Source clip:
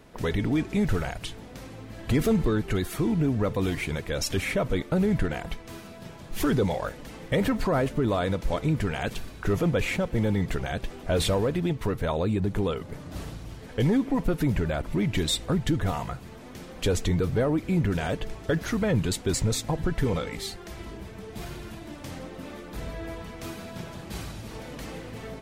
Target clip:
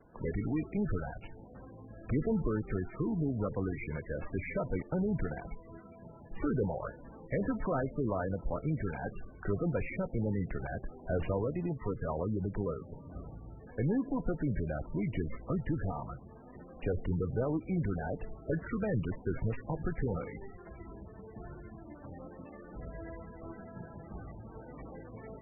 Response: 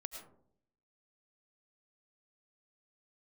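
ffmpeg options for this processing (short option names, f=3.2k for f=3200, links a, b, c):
-filter_complex "[0:a]acrossover=split=140|470|2600[a][b][c][d];[d]aeval=exprs='abs(val(0))':c=same[e];[a][b][c][e]amix=inputs=4:normalize=0,volume=-7.5dB" -ar 24000 -c:a libmp3lame -b:a 8k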